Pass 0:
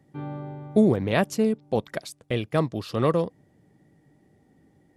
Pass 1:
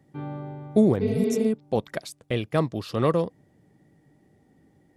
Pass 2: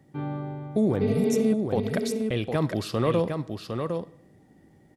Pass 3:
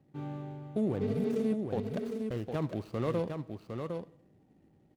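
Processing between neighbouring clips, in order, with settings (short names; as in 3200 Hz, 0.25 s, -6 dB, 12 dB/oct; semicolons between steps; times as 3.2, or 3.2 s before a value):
spectral repair 1.04–1.43, 220–5200 Hz after
limiter -17.5 dBFS, peak gain reduction 9 dB; echo 0.757 s -5.5 dB; reverb RT60 0.65 s, pre-delay 5 ms, DRR 17 dB; gain +2.5 dB
median filter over 25 samples; gain -7.5 dB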